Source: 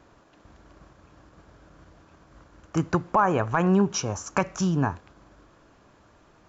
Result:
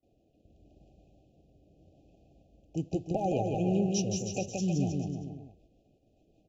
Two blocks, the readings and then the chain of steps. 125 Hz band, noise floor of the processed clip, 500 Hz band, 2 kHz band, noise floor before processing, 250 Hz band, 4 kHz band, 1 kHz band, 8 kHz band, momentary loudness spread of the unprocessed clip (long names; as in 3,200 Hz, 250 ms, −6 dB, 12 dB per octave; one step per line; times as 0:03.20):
−4.5 dB, −69 dBFS, −5.0 dB, −18.0 dB, −58 dBFS, −5.0 dB, −4.5 dB, −12.0 dB, can't be measured, 8 LU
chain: noise gate with hold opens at −47 dBFS
in parallel at −10.5 dB: dead-zone distortion −45 dBFS
on the sum: rotating-speaker cabinet horn 0.85 Hz, later 5.5 Hz, at 0:03.23
linear-phase brick-wall band-stop 820–2,400 Hz
on a send: bouncing-ball delay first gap 170 ms, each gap 0.85×, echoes 5
on the sum: one half of a high-frequency compander decoder only
level −7.5 dB